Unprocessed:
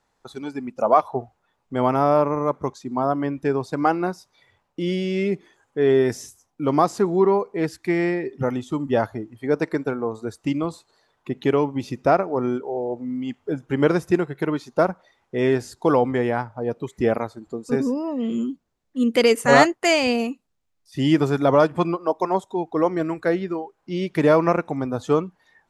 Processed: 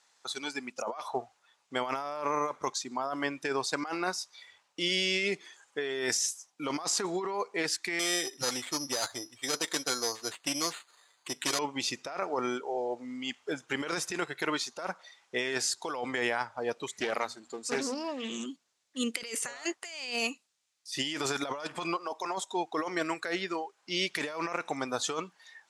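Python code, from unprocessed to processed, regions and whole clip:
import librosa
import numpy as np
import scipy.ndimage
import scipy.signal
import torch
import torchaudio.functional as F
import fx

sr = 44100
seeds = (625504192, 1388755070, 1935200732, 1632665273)

y = fx.chain(x, sr, fx.tube_stage(drive_db=19.0, bias=0.4),
    fx.notch_comb(f0_hz=210.0),
    fx.resample_bad(factor=8, down='none', up='hold'), at=(7.99, 11.59))
y = fx.chain(y, sr, fx.halfwave_gain(db=-3.0),
    fx.hum_notches(base_hz=60, count=4),
    fx.doppler_dist(depth_ms=0.17), at=(16.87, 18.46))
y = fx.weighting(y, sr, curve='ITU-R 468')
y = fx.over_compress(y, sr, threshold_db=-28.0, ratio=-1.0)
y = y * 10.0 ** (-4.5 / 20.0)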